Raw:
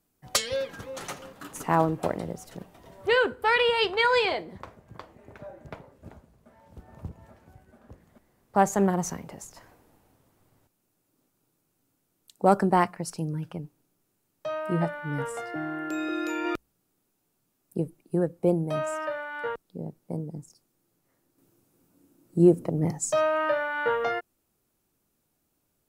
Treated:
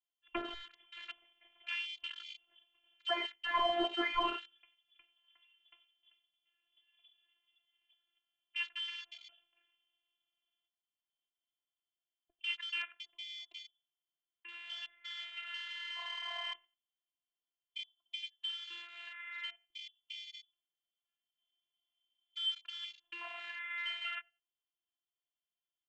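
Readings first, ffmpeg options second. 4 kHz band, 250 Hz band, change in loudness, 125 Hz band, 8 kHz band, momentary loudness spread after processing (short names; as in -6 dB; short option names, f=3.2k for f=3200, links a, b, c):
-2.5 dB, -21.5 dB, -12.5 dB, under -40 dB, -28.0 dB, 16 LU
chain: -filter_complex "[0:a]highpass=f=130:w=0.5412,highpass=f=130:w=1.3066,equalizer=f=1.5k:w=0.57:g=-8,aecho=1:1:91|182:0.112|0.0168,flanger=delay=6.6:depth=7.1:regen=-68:speed=0.82:shape=sinusoidal,lowpass=f=3k:t=q:w=0.5098,lowpass=f=3k:t=q:w=0.6013,lowpass=f=3k:t=q:w=0.9,lowpass=f=3k:t=q:w=2.563,afreqshift=-3500,acrossover=split=230|1800[a][b][c];[c]acompressor=threshold=-45dB:ratio=10[d];[a][b][d]amix=inputs=3:normalize=0,afwtdn=0.00447,highshelf=f=2.3k:g=-11.5,afftfilt=real='hypot(re,im)*cos(PI*b)':imag='0':win_size=512:overlap=0.75,volume=13dB"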